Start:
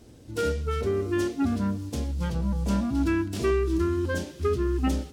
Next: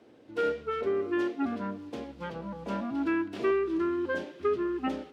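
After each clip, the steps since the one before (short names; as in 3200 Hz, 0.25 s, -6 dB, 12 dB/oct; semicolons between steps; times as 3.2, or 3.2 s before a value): HPF 150 Hz 12 dB/oct; three-band isolator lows -13 dB, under 280 Hz, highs -22 dB, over 3300 Hz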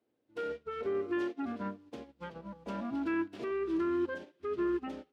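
limiter -27.5 dBFS, peak gain reduction 10.5 dB; upward expander 2.5:1, over -48 dBFS; gain +2.5 dB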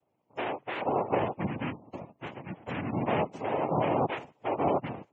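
noise vocoder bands 4; spectral gate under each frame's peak -25 dB strong; gain +4.5 dB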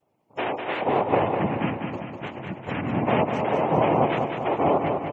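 vibrato 3.2 Hz 27 cents; feedback echo 0.199 s, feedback 56%, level -5.5 dB; gain +5.5 dB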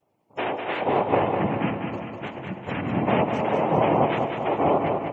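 reverb RT60 3.3 s, pre-delay 5 ms, DRR 12.5 dB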